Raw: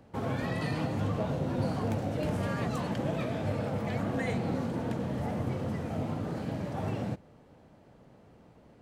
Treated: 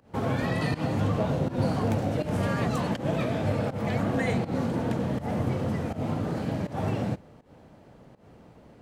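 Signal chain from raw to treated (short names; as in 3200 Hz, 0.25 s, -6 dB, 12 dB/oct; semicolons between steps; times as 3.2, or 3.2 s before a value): pump 81 bpm, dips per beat 1, -17 dB, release 0.17 s; gain +5 dB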